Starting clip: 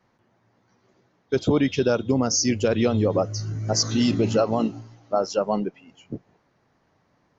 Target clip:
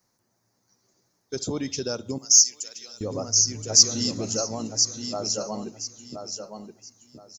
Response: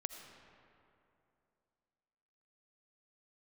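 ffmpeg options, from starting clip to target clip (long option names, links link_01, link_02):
-filter_complex "[0:a]asplit=2[link_01][link_02];[link_02]aecho=0:1:1023|2046|3069:0.447|0.107|0.0257[link_03];[link_01][link_03]amix=inputs=2:normalize=0,aexciter=amount=14.8:drive=1.9:freq=4700,asettb=1/sr,asplit=3[link_04][link_05][link_06];[link_04]atrim=end=2.184[link_07];[link_05]atrim=start=2.18:end=3.01,asetpts=PTS-STARTPTS,afade=type=in:duration=0.004:curve=qsin,afade=type=out:start_time=0.826:duration=0.004:curve=qsin,aderivative[link_08];[link_06]atrim=start=3.006[link_09];[link_07][link_08]acrossfade=duration=0.004:curve1=hsin:curve2=qsin[link_10];[link_10][link_09]acrossfade=duration=0.004:curve1=qsin:curve2=hsin,asplit=2[link_11][link_12];[link_12]adelay=67,lowpass=frequency=2000:poles=1,volume=-19.5dB,asplit=2[link_13][link_14];[link_14]adelay=67,lowpass=frequency=2000:poles=1,volume=0.49,asplit=2[link_15][link_16];[link_16]adelay=67,lowpass=frequency=2000:poles=1,volume=0.49,asplit=2[link_17][link_18];[link_18]adelay=67,lowpass=frequency=2000:poles=1,volume=0.49[link_19];[link_13][link_15][link_17][link_19]amix=inputs=4:normalize=0[link_20];[link_11][link_20]amix=inputs=2:normalize=0,volume=-9.5dB"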